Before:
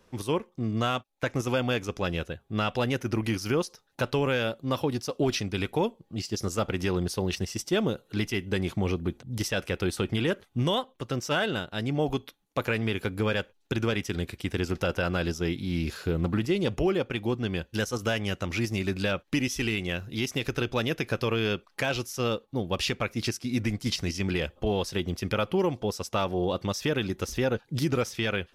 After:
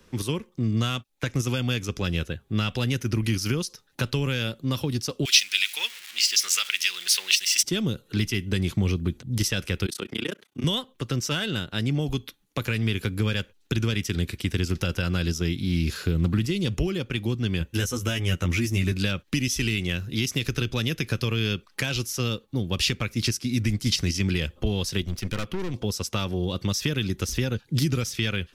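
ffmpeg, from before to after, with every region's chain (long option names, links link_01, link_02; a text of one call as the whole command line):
ffmpeg -i in.wav -filter_complex "[0:a]asettb=1/sr,asplit=3[link_01][link_02][link_03];[link_01]atrim=end=5.254[link_04];[link_02]atrim=start=5.25:end=7.63,asetpts=PTS-STARTPTS,afade=type=in:duration=0.004:curve=qsin,afade=type=out:start_time=2.376:duration=0.004:curve=qsin,aeval=exprs='val(0)+0.5*0.00794*sgn(val(0))':channel_layout=same,highpass=frequency=2400:width_type=q:width=1.6,acontrast=67[link_05];[link_03]atrim=start=7.626[link_06];[link_04][link_05]acrossfade=duration=0.004:curve1=hsin:curve2=qsin[link_07];[link_07][link_06]acrossfade=duration=0.004:curve1=qsin:curve2=hsin,asettb=1/sr,asplit=3[link_08][link_09][link_10];[link_08]atrim=end=9.864[link_11];[link_09]atrim=start=9.86:end=10.64,asetpts=PTS-STARTPTS,afade=type=in:duration=0.004:curve=qsin,afade=type=out:start_time=0.776:duration=0.004:curve=qsin,highpass=280,tremolo=f=30:d=0.974[link_12];[link_10]atrim=start=10.636[link_13];[link_11][link_12]acrossfade=duration=0.004:curve1=hsin:curve2=qsin[link_14];[link_14][link_13]acrossfade=duration=0.004:curve1=qsin:curve2=hsin,asettb=1/sr,asplit=3[link_15][link_16][link_17];[link_15]atrim=end=17.594[link_18];[link_16]atrim=start=17.59:end=18.92,asetpts=PTS-STARTPTS,afade=type=in:duration=0.004:curve=qsin,afade=type=out:start_time=1.326:duration=0.004:curve=qsin,equalizer=frequency=4500:width_type=o:width=0.63:gain=-8,asplit=2[link_19][link_20];[link_20]adelay=12,volume=-3dB[link_21];[link_19][link_21]amix=inputs=2:normalize=0,atrim=end_sample=58653[link_22];[link_17]atrim=start=18.916[link_23];[link_18][link_22]acrossfade=duration=0.004:curve1=hsin:curve2=qsin[link_24];[link_24][link_23]acrossfade=duration=0.004:curve1=qsin:curve2=hsin,asettb=1/sr,asplit=3[link_25][link_26][link_27];[link_25]atrim=end=25.014[link_28];[link_26]atrim=start=25.01:end=25.74,asetpts=PTS-STARTPTS,afade=type=in:duration=0.004:curve=qsin,afade=type=out:start_time=0.726:duration=0.004:curve=qsin,aeval=exprs='(tanh(31.6*val(0)+0.7)-tanh(0.7))/31.6':channel_layout=same,bandreject=frequency=850:width=18[link_29];[link_27]atrim=start=25.736[link_30];[link_28][link_29]acrossfade=duration=0.004:curve1=hsin:curve2=qsin[link_31];[link_31][link_30]acrossfade=duration=0.004:curve1=qsin:curve2=hsin,equalizer=frequency=730:width_type=o:width=1.2:gain=-8.5,acrossover=split=190|3000[link_32][link_33][link_34];[link_33]acompressor=threshold=-36dB:ratio=6[link_35];[link_32][link_35][link_34]amix=inputs=3:normalize=0,volume=7dB" out.wav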